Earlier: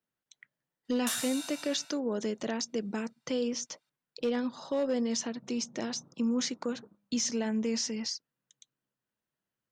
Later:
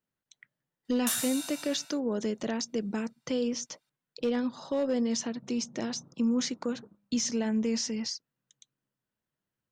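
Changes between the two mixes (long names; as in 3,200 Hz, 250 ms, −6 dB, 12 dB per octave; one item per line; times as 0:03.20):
background: add high-shelf EQ 11,000 Hz +11 dB
master: add low-shelf EQ 180 Hz +6.5 dB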